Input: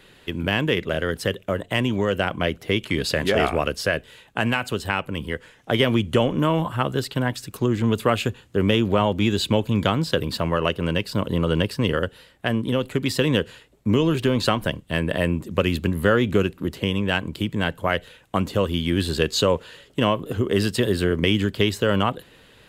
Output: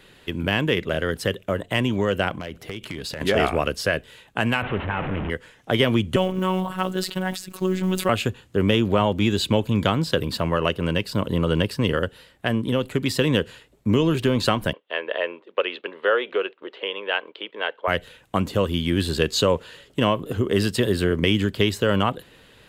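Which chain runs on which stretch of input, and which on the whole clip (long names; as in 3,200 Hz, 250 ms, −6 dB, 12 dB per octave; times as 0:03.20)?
0:02.31–0:03.21: downward compressor 8 to 1, threshold −27 dBFS + hard clipping −24.5 dBFS
0:04.62–0:05.30: linear delta modulator 16 kbit/s, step −21 dBFS + high-shelf EQ 2,300 Hz −9.5 dB
0:06.16–0:08.09: one scale factor per block 7 bits + phases set to zero 186 Hz + level that may fall only so fast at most 97 dB per second
0:14.73–0:17.88: elliptic band-pass filter 440–3,400 Hz, stop band 80 dB + noise gate −48 dBFS, range −8 dB
whole clip: no processing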